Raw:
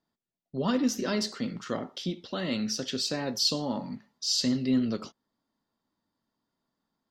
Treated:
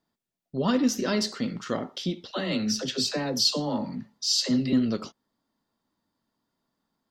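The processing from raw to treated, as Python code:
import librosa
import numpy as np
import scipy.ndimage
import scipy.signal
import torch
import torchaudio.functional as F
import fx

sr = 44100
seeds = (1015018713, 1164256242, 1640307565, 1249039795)

y = fx.dispersion(x, sr, late='lows', ms=69.0, hz=370.0, at=(2.31, 4.73))
y = F.gain(torch.from_numpy(y), 3.0).numpy()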